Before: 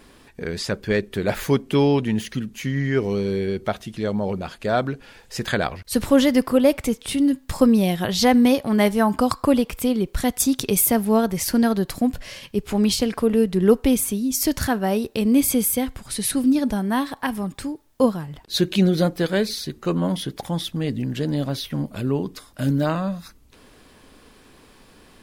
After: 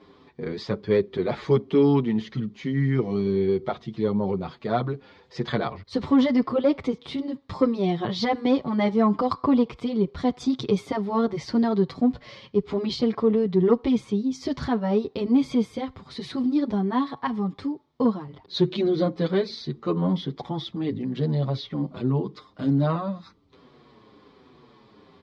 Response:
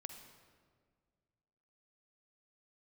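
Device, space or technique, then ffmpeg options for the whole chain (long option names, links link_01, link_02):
barber-pole flanger into a guitar amplifier: -filter_complex "[0:a]asplit=2[link_01][link_02];[link_02]adelay=7.1,afreqshift=-1.2[link_03];[link_01][link_03]amix=inputs=2:normalize=1,asoftclip=type=tanh:threshold=-11.5dB,highpass=100,equalizer=frequency=140:width_type=q:width=4:gain=4,equalizer=frequency=400:width_type=q:width=4:gain=4,equalizer=frequency=610:width_type=q:width=4:gain=-3,equalizer=frequency=1100:width_type=q:width=4:gain=4,equalizer=frequency=1600:width_type=q:width=4:gain=-9,equalizer=frequency=2700:width_type=q:width=4:gain=-10,lowpass=frequency=4100:width=0.5412,lowpass=frequency=4100:width=1.3066,volume=1dB"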